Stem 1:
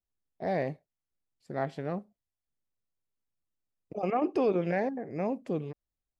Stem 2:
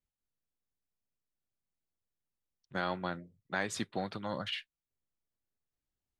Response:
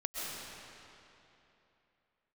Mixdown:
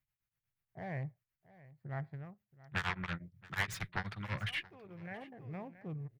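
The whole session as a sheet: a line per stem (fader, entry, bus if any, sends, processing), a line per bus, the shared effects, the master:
-9.0 dB, 0.35 s, no send, echo send -19 dB, Wiener smoothing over 15 samples; bell 110 Hz +8 dB 0.4 oct; auto duck -18 dB, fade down 0.55 s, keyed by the second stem
-3.0 dB, 0.00 s, no send, echo send -22 dB, high shelf 3900 Hz +3 dB; added harmonics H 7 -6 dB, 8 -23 dB, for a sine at -17 dBFS; beating tremolo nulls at 8.3 Hz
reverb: off
echo: echo 0.676 s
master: ten-band EQ 125 Hz +11 dB, 250 Hz -9 dB, 500 Hz -8 dB, 2000 Hz +6 dB, 4000 Hz -5 dB, 8000 Hz -11 dB

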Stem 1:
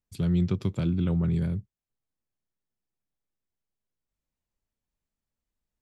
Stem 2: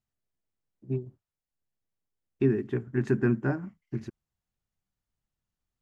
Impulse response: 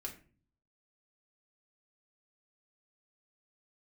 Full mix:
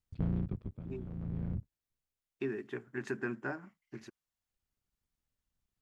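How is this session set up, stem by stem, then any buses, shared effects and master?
-7.5 dB, 0.00 s, no send, cycle switcher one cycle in 3, muted; LPF 2100 Hz 12 dB/oct; low shelf 360 Hz +10 dB; auto duck -17 dB, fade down 0.60 s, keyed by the second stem
-0.5 dB, 0.00 s, no send, HPF 970 Hz 6 dB/oct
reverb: off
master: compressor 2:1, threshold -32 dBFS, peak gain reduction 5.5 dB

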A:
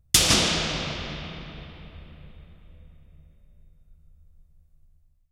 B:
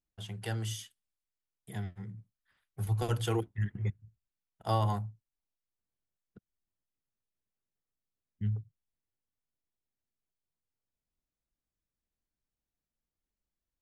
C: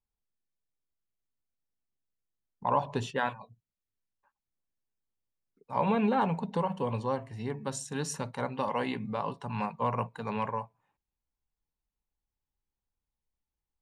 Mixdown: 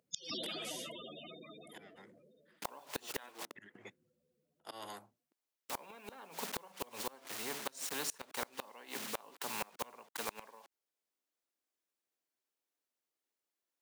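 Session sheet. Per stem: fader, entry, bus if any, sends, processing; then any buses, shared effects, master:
-4.5 dB, 0.00 s, no send, loudest bins only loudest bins 16; auto duck -13 dB, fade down 1.10 s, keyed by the third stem
-10.5 dB, 0.00 s, no send, auto swell 0.154 s
+1.0 dB, 0.00 s, no send, bit-crush 8-bit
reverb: off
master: HPF 310 Hz 24 dB/oct; flipped gate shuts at -22 dBFS, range -31 dB; spectral compressor 2:1

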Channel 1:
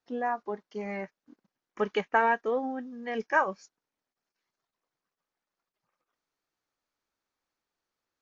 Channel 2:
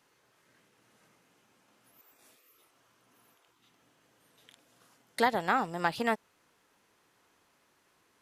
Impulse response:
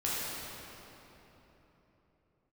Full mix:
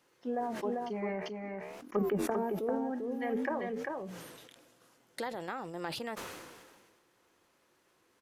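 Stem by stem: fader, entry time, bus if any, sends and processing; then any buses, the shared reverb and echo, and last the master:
+3.0 dB, 0.15 s, no send, echo send -4 dB, treble ducked by the level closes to 380 Hz, closed at -26 dBFS; flange 0.57 Hz, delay 7.3 ms, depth 9.2 ms, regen -83%
0.79 s -2 dB -> 1.12 s -15 dB -> 2.18 s -15 dB -> 2.5 s -2.5 dB, 0.00 s, no send, no echo send, compressor 2.5:1, threshold -40 dBFS, peak gain reduction 13 dB; small resonant body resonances 350/510 Hz, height 7 dB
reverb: off
echo: echo 0.395 s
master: sustainer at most 35 dB/s

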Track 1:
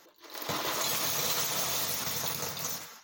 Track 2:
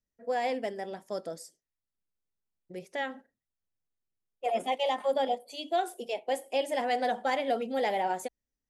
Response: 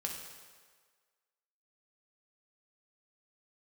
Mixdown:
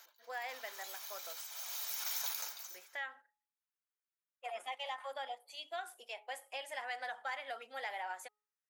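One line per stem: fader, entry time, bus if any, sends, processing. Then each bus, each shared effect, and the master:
-0.5 dB, 0.00 s, no send, comb 1.3 ms, depth 36%; auto duck -18 dB, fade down 0.30 s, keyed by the second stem
-8.5 dB, 0.00 s, no send, bell 1400 Hz +9.5 dB 1.6 oct; de-hum 420.8 Hz, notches 3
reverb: off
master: HPF 990 Hz 12 dB/oct; high shelf 11000 Hz +4.5 dB; compressor 2:1, threshold -40 dBFS, peak gain reduction 7.5 dB

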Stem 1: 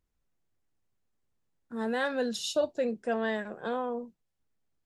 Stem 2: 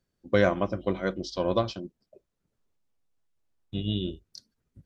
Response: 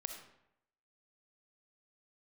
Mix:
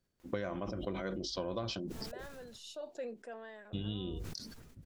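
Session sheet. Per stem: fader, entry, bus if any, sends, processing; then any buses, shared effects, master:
-7.5 dB, 0.20 s, no send, tone controls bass -13 dB, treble -3 dB; fast leveller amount 50%; auto duck -15 dB, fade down 0.70 s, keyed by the second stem
-3.0 dB, 0.00 s, no send, sustainer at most 39 dB/s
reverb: off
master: compressor 8:1, threshold -34 dBFS, peak gain reduction 15 dB

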